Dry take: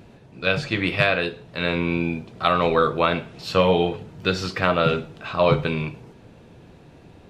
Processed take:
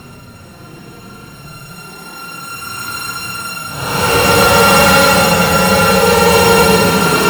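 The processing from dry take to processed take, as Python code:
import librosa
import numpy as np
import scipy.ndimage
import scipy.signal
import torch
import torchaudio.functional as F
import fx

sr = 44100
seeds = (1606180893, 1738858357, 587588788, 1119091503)

y = np.r_[np.sort(x[:len(x) // 32 * 32].reshape(-1, 32), axis=1).ravel(), x[len(x) // 32 * 32:]]
y = fx.paulstretch(y, sr, seeds[0], factor=16.0, window_s=0.05, from_s=3.3)
y = fx.fold_sine(y, sr, drive_db=3, ceiling_db=-2.5)
y = y * librosa.db_to_amplitude(1.0)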